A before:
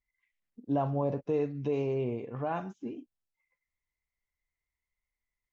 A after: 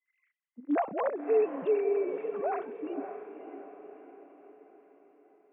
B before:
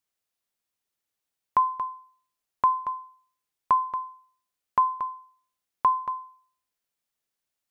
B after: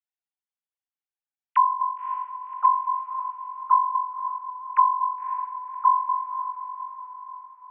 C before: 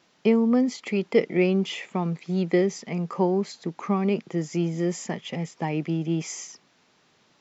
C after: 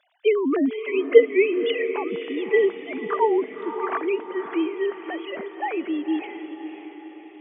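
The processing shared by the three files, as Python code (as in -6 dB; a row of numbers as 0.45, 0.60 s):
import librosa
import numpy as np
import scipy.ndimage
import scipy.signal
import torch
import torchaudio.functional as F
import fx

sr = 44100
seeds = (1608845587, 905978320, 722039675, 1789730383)

y = fx.sine_speech(x, sr)
y = fx.highpass(y, sr, hz=410.0, slope=6)
y = fx.echo_diffused(y, sr, ms=560, feedback_pct=51, wet_db=-9.5)
y = y * 10.0 ** (4.5 / 20.0)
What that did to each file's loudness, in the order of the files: +2.0, +2.5, +2.5 LU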